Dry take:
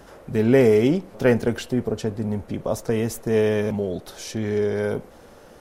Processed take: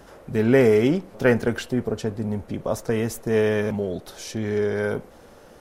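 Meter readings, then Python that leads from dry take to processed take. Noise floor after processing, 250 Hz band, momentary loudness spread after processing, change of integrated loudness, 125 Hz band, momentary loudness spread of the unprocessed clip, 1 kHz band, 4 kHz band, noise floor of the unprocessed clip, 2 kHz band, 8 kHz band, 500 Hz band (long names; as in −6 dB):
−48 dBFS, −1.0 dB, 12 LU, −0.5 dB, −1.0 dB, 12 LU, +0.5 dB, −0.5 dB, −47 dBFS, +2.5 dB, −1.0 dB, −0.5 dB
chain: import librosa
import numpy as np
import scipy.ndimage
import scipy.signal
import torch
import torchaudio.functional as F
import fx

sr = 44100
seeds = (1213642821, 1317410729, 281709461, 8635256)

y = fx.dynamic_eq(x, sr, hz=1500.0, q=1.4, threshold_db=-38.0, ratio=4.0, max_db=5)
y = y * librosa.db_to_amplitude(-1.0)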